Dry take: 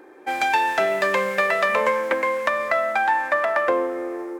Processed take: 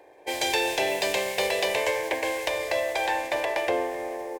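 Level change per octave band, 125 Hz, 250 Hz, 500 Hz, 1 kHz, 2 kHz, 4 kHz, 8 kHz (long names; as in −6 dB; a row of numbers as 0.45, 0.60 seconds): can't be measured, −4.5 dB, −4.0 dB, −8.5 dB, −6.5 dB, +5.5 dB, +7.5 dB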